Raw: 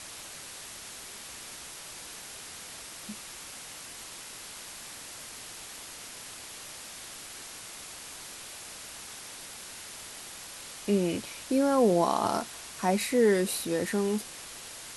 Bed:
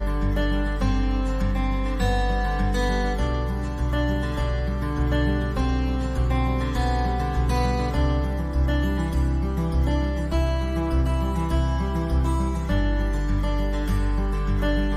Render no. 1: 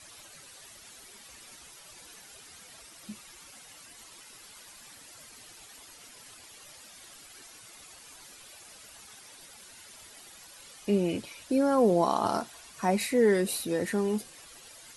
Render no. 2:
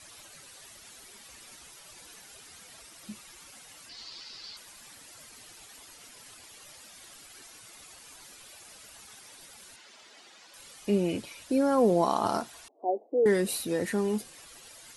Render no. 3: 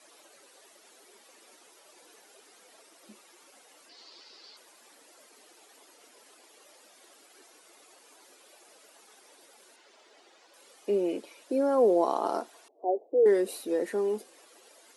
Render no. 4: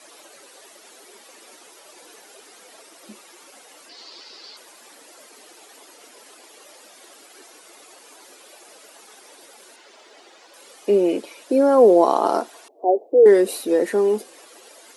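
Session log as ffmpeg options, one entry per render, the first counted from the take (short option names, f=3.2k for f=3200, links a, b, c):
-af "afftdn=nr=11:nf=-44"
-filter_complex "[0:a]asettb=1/sr,asplit=3[a][b][c];[a]atrim=end=3.894[d];[b]atrim=start=3.89:end=4.57,asetpts=PTS-STARTPTS,afade=t=in:d=0.004:c=qsin,afade=t=out:st=0.676:d=0.004:c=qsin,lowpass=f=4.6k:t=q:w=5.8[e];[c]atrim=start=4.566[f];[d][e]acrossfade=d=0.004:c1=hsin:c2=qsin[g];[g][f]acrossfade=d=0.004:c1=qsin:c2=hsin,asettb=1/sr,asplit=3[h][i][j];[h]atrim=end=9.764[k];[i]atrim=start=9.76:end=10.54,asetpts=PTS-STARTPTS,afade=t=in:d=0.004:c=qsin,afade=t=out:st=0.776:d=0.004:c=qsin,acrossover=split=200 6700:gain=0.1 1 0.0631[l][m][n];[l][m][n]amix=inputs=3:normalize=0[o];[j]atrim=start=10.536[p];[k][o]acrossfade=d=0.004:c1=hsin:c2=qsin[q];[q][p]acrossfade=d=0.004:c1=qsin:c2=hsin,asettb=1/sr,asplit=3[r][s][t];[r]atrim=end=12.684[u];[s]atrim=start=12.68:end=13.26,asetpts=PTS-STARTPTS,afade=t=in:d=0.004:c=qsin,afade=t=out:st=0.576:d=0.004:c=qsin,asuperpass=centerf=470:order=12:qfactor=0.92[v];[t]atrim=start=13.256[w];[u][v]acrossfade=d=0.004:c1=hsin:c2=qsin[x];[x][w]acrossfade=d=0.004:c1=qsin:c2=hsin"
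-af "highpass=f=360:w=0.5412,highpass=f=360:w=1.3066,tiltshelf=f=680:g=8.5"
-af "volume=10dB"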